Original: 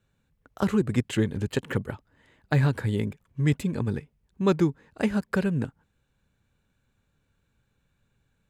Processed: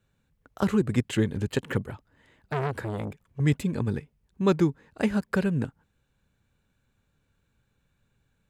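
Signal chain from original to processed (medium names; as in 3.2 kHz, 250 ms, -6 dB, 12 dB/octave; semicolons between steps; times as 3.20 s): 1.82–3.40 s: transformer saturation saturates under 1.4 kHz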